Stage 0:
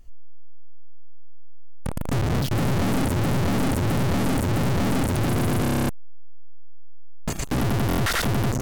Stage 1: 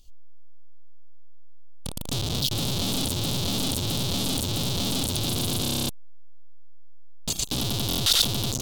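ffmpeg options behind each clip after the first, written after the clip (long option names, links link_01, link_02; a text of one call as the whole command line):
ffmpeg -i in.wav -af "highshelf=frequency=2600:width_type=q:width=3:gain=11.5,volume=-6.5dB" out.wav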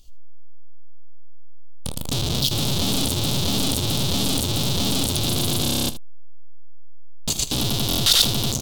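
ffmpeg -i in.wav -af "aecho=1:1:14|26|78:0.15|0.141|0.188,volume=4dB" out.wav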